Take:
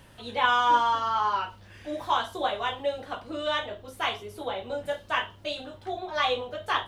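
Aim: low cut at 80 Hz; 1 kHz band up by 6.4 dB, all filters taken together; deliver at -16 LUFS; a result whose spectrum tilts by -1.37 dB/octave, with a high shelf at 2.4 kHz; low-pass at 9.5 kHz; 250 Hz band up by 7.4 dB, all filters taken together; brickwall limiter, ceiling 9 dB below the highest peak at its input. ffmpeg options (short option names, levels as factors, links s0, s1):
-af "highpass=80,lowpass=9500,equalizer=f=250:t=o:g=9,equalizer=f=1000:t=o:g=7.5,highshelf=f=2400:g=-4.5,volume=3.16,alimiter=limit=0.631:level=0:latency=1"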